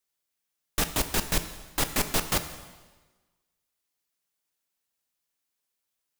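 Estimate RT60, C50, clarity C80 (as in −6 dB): 1.3 s, 11.0 dB, 12.5 dB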